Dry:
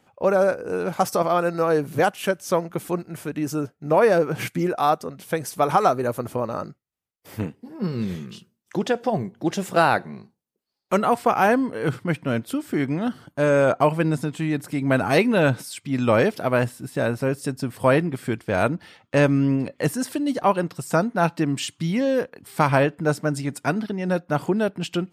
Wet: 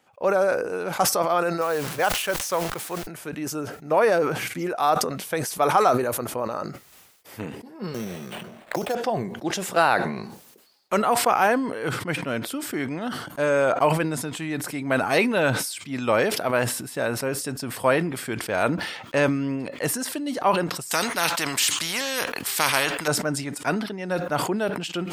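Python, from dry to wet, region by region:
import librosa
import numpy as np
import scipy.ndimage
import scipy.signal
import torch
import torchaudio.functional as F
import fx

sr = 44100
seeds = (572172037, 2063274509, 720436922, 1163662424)

y = fx.chain(x, sr, fx.delta_hold(step_db=-38.5),
    fx.peak_eq(hz=250.0, db=-6.5, octaves=1.6),
    fx.mod_noise(seeds[0], snr_db=23), at=(1.61, 3.07))
y = fx.chain(y, sr, fx.sample_hold(seeds[1], rate_hz=5900.0, jitter_pct=0),
    fx.peak_eq(hz=640.0, db=11.0, octaves=0.63),
    fx.band_squash(depth_pct=100), at=(7.94, 8.95))
y = fx.chain(y, sr, fx.tilt_shelf(db=-4.5, hz=1100.0),
    fx.spectral_comp(ratio=2.0), at=(20.91, 23.08))
y = fx.low_shelf(y, sr, hz=280.0, db=-12.0)
y = fx.sustainer(y, sr, db_per_s=55.0)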